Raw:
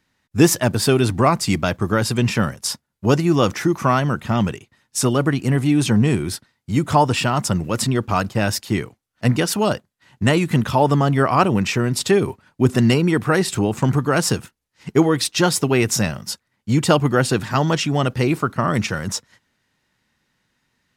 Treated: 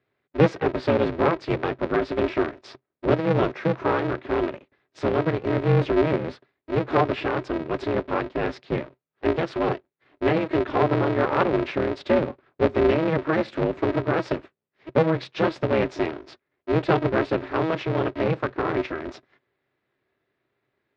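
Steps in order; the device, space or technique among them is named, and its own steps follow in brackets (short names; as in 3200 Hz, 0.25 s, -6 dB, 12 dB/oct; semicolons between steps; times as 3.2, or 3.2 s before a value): ring modulator pedal into a guitar cabinet (polarity switched at an audio rate 160 Hz; speaker cabinet 96–3400 Hz, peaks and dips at 130 Hz +10 dB, 390 Hz +8 dB, 570 Hz +5 dB, 3000 Hz -5 dB); gain -7.5 dB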